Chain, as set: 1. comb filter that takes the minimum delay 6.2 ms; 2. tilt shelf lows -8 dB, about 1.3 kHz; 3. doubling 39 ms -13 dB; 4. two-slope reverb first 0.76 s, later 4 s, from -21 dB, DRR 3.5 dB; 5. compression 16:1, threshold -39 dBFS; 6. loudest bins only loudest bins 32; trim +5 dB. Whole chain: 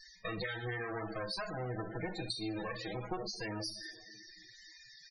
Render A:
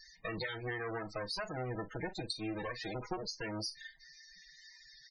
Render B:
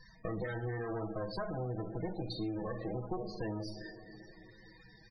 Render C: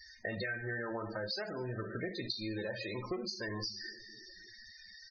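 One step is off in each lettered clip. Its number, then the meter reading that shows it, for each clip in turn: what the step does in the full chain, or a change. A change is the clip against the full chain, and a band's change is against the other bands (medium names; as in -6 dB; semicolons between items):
4, crest factor change +1.5 dB; 2, 4 kHz band -10.5 dB; 1, 1 kHz band -4.5 dB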